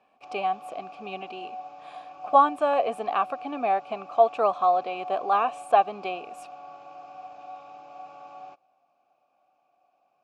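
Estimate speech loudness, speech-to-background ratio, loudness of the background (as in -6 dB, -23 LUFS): -25.0 LUFS, 17.5 dB, -42.5 LUFS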